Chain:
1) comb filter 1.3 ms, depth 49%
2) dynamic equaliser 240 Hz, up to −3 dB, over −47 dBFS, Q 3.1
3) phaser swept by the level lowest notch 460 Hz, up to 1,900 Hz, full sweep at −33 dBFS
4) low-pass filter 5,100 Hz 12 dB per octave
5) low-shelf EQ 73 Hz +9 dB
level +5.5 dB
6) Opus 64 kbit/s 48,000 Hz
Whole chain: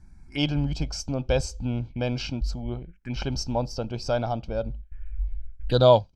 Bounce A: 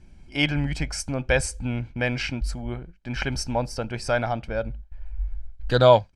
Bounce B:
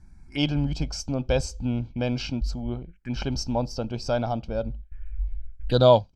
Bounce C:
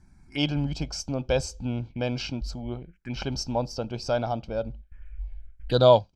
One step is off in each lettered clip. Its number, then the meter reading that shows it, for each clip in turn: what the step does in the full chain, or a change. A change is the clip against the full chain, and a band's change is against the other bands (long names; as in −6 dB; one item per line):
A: 3, 2 kHz band +9.5 dB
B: 2, 250 Hz band +2.0 dB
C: 5, 125 Hz band −2.5 dB